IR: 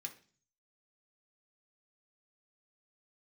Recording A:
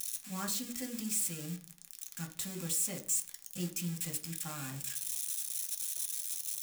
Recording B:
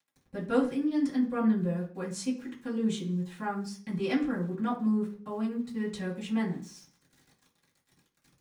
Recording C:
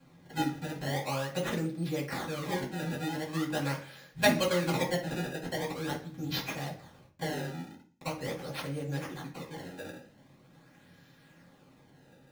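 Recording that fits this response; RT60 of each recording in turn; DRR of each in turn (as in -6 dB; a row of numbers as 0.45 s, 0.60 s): A; 0.40 s, 0.40 s, 0.40 s; 2.0 dB, -8.0 dB, -13.0 dB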